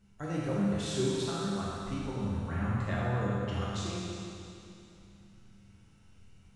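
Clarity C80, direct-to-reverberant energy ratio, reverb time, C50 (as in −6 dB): −1.5 dB, −7.5 dB, 2.7 s, −3.5 dB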